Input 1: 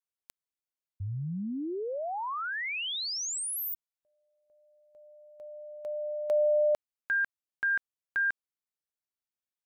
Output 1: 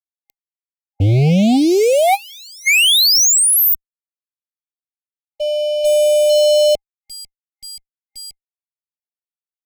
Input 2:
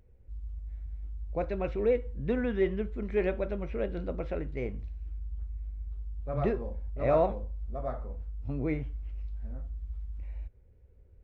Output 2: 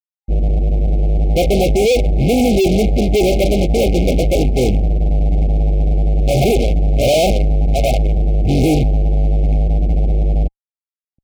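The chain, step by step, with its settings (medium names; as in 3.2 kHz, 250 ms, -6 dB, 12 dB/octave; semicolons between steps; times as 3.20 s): spectral gate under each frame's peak -15 dB strong; fuzz box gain 49 dB, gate -48 dBFS; FFT band-reject 810–2100 Hz; upward expansion 2.5:1, over -27 dBFS; trim +3 dB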